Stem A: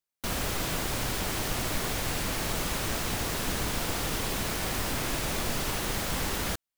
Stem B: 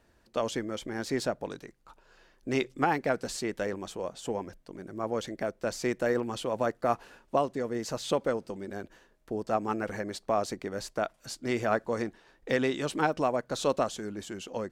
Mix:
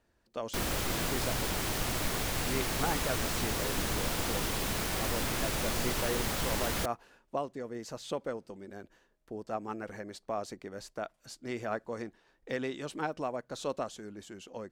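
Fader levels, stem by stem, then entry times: -2.0, -7.5 dB; 0.30, 0.00 s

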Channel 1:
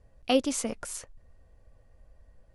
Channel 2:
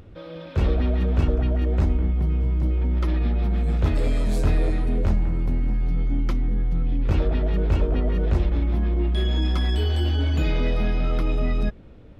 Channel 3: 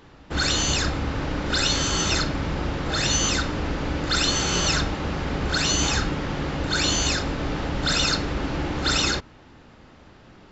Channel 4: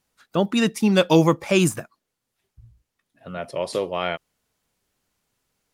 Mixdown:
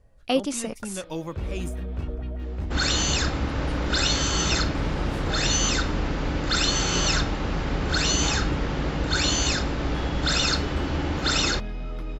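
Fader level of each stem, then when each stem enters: +1.0, -10.5, -1.0, -17.0 dB; 0.00, 0.80, 2.40, 0.00 s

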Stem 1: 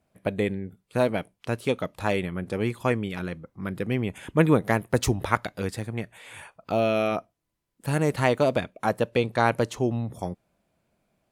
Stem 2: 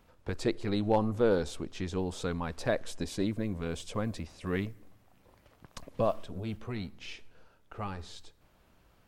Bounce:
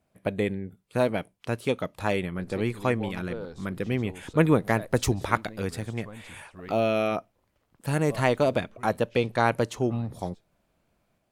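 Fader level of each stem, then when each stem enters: -1.0, -11.0 dB; 0.00, 2.10 s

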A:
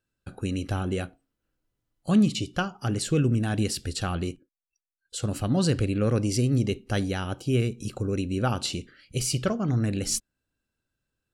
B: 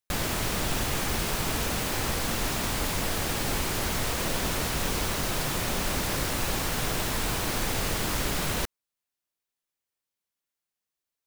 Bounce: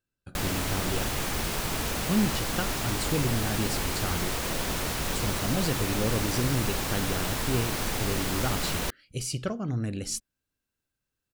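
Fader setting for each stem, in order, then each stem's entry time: -5.0, -1.5 dB; 0.00, 0.25 s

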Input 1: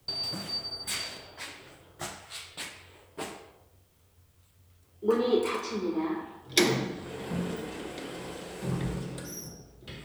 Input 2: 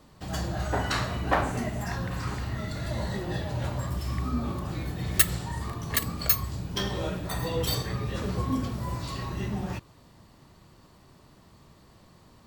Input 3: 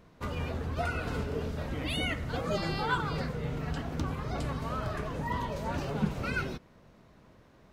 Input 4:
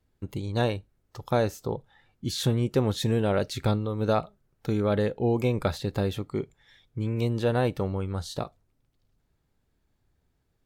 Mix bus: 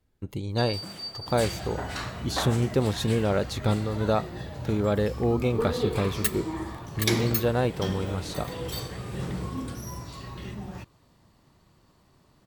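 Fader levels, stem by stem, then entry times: -3.0, -6.0, -14.0, 0.0 dB; 0.50, 1.05, 1.10, 0.00 s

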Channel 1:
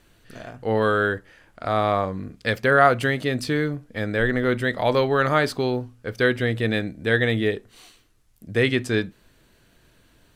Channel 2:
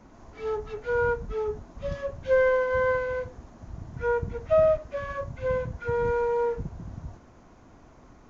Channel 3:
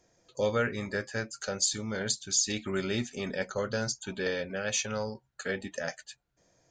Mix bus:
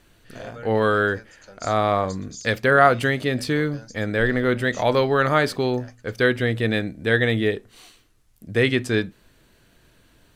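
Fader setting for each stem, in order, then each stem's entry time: +1.0 dB, off, -12.5 dB; 0.00 s, off, 0.00 s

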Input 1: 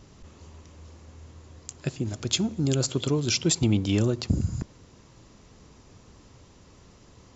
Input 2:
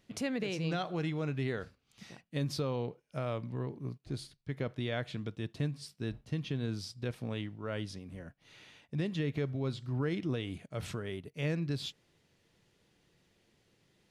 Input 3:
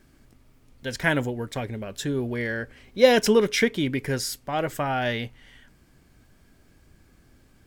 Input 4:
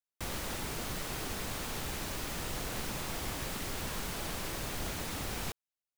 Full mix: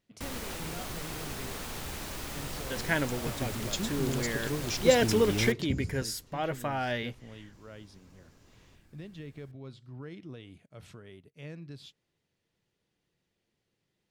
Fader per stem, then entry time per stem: -9.0, -10.5, -6.0, -1.0 dB; 1.40, 0.00, 1.85, 0.00 s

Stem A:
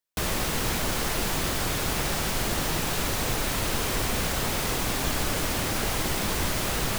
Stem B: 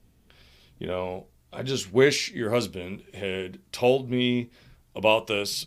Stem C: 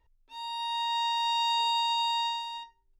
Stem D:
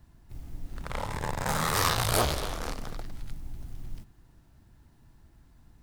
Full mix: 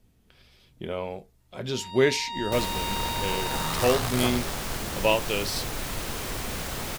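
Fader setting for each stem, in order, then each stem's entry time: -5.5, -2.0, -5.5, -4.0 dB; 2.35, 0.00, 1.40, 2.05 s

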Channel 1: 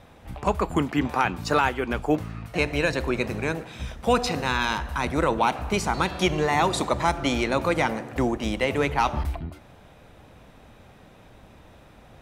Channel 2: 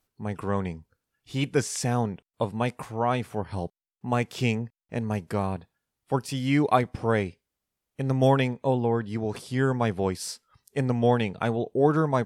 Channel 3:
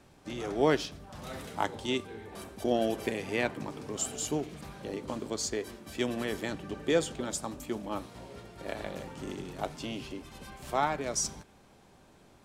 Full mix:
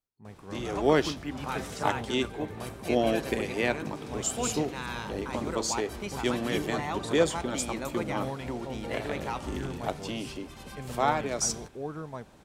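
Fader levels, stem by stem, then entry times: -12.5, -15.5, +2.5 dB; 0.30, 0.00, 0.25 s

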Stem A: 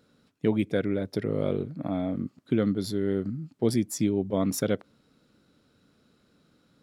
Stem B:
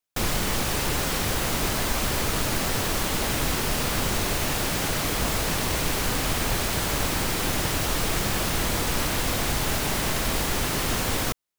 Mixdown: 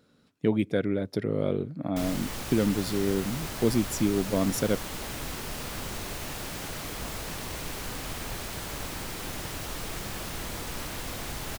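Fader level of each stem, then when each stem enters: 0.0, -10.5 dB; 0.00, 1.80 s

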